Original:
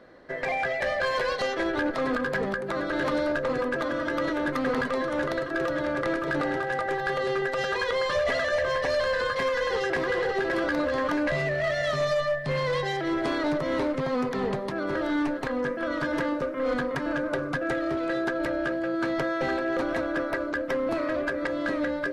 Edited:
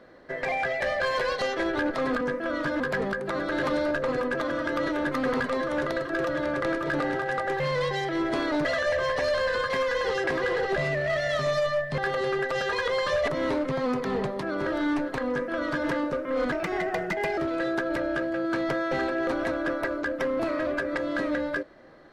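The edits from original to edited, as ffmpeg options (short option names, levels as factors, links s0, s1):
-filter_complex "[0:a]asplit=10[s0][s1][s2][s3][s4][s5][s6][s7][s8][s9];[s0]atrim=end=2.212[s10];[s1]atrim=start=15.578:end=16.172[s11];[s2]atrim=start=2.208:end=7.012[s12];[s3]atrim=start=12.518:end=13.572[s13];[s4]atrim=start=8.308:end=10.422[s14];[s5]atrim=start=11.298:end=12.522[s15];[s6]atrim=start=7.008:end=8.312[s16];[s7]atrim=start=13.568:end=16.814[s17];[s8]atrim=start=16.81:end=17.87,asetpts=PTS-STARTPTS,asetrate=54684,aresample=44100,atrim=end_sample=37698,asetpts=PTS-STARTPTS[s18];[s9]atrim=start=17.866[s19];[s10][s11]acrossfade=d=0.004:c1=hsin:c2=hsin[s20];[s20][s12]acrossfade=d=0.004:c1=hsin:c2=hsin[s21];[s21][s13]acrossfade=d=0.004:c1=hsin:c2=hsin[s22];[s22][s14]acrossfade=d=0.004:c1=hsin:c2=hsin[s23];[s23][s15]acrossfade=d=0.004:c1=hsin:c2=hsin[s24];[s24][s16]acrossfade=d=0.004:c1=hsin:c2=hsin[s25];[s25][s17]acrossfade=d=0.004:c1=hsin:c2=hsin[s26];[s26][s18]acrossfade=d=0.004:c1=hsin:c2=hsin[s27];[s27][s19]acrossfade=d=0.004:c1=hsin:c2=hsin"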